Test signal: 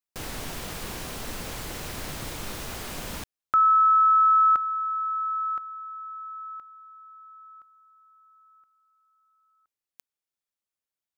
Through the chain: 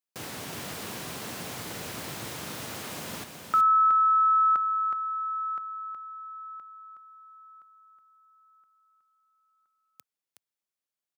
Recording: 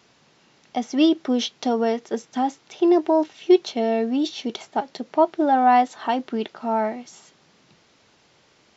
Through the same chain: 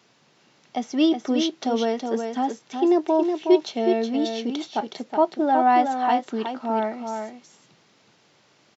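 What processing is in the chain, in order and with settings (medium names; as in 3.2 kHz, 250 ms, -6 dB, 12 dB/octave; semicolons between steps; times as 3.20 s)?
high-pass 100 Hz 24 dB/octave; on a send: delay 369 ms -6 dB; on the sum: trim -2 dB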